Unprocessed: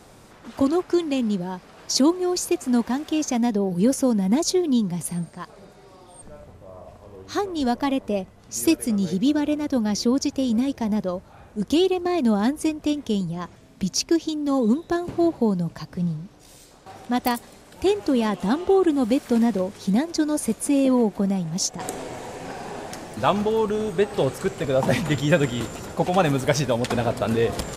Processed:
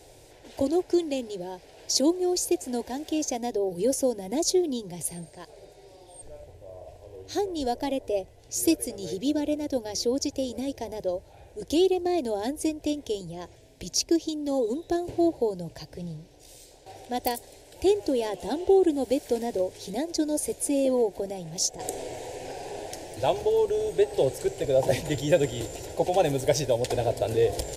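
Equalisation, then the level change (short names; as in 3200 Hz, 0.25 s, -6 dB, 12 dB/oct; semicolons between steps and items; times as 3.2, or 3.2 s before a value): dynamic EQ 2600 Hz, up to -4 dB, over -40 dBFS, Q 0.93; fixed phaser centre 500 Hz, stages 4; 0.0 dB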